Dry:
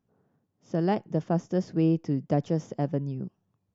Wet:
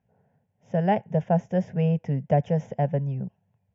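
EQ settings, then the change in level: HPF 42 Hz; air absorption 120 m; fixed phaser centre 1200 Hz, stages 6; +7.5 dB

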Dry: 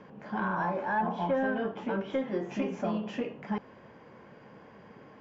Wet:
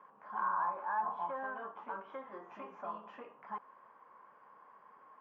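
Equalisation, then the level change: band-pass 1100 Hz, Q 4.8; +3.0 dB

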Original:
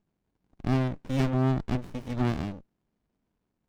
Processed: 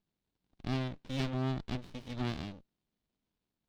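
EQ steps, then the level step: bell 3800 Hz +11 dB 1.3 oct; -9.0 dB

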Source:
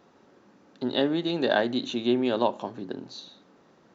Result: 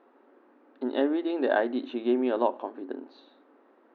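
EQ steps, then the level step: brick-wall FIR high-pass 230 Hz; LPF 2200 Hz 12 dB/oct; air absorption 160 m; 0.0 dB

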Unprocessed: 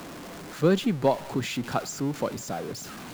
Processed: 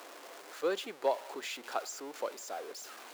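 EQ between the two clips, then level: HPF 410 Hz 24 dB/oct; -6.5 dB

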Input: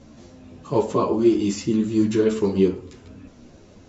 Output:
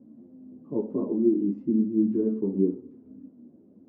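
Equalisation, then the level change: ladder band-pass 290 Hz, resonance 50%; low shelf 430 Hz +9.5 dB; -2.0 dB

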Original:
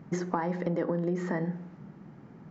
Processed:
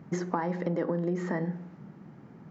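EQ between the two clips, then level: HPF 59 Hz; 0.0 dB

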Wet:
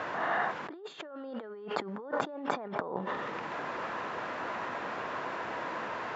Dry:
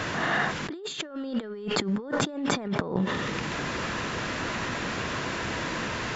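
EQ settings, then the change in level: band-pass 830 Hz, Q 1.2; 0.0 dB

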